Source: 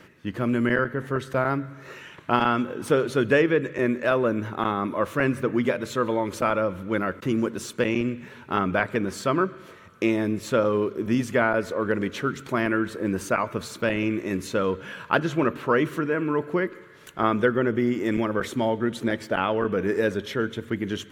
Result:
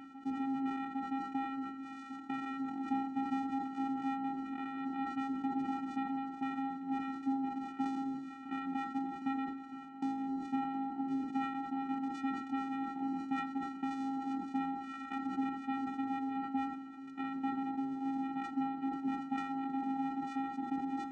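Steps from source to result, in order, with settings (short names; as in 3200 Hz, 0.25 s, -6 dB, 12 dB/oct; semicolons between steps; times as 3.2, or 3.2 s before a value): octaver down 1 oct, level +3 dB; Chebyshev low-pass 2700 Hz, order 8; low shelf 210 Hz -10 dB; compressor 5:1, threshold -33 dBFS, peak gain reduction 15.5 dB; vocoder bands 4, square 269 Hz; reverse echo 0.806 s -12 dB; on a send at -10 dB: reverb RT60 1.1 s, pre-delay 3 ms; on the sum: sustainer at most 58 dB/s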